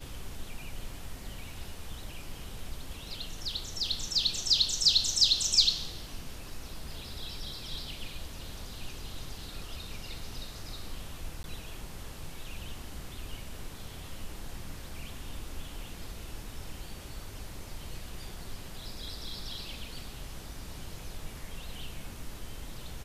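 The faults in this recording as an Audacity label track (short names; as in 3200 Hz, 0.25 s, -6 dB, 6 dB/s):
11.430000	11.440000	gap 11 ms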